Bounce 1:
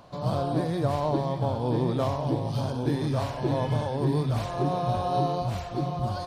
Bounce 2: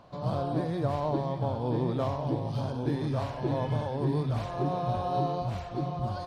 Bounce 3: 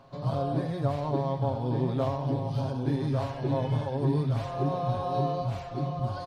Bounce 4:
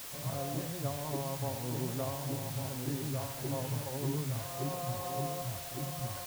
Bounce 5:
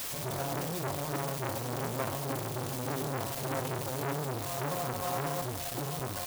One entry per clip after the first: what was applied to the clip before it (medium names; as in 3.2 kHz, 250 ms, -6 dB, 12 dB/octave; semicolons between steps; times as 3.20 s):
treble shelf 6.1 kHz -10.5 dB; trim -3 dB
comb 7.4 ms; trim -1.5 dB
word length cut 6-bit, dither triangular; trim -8.5 dB
transformer saturation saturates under 1.5 kHz; trim +7.5 dB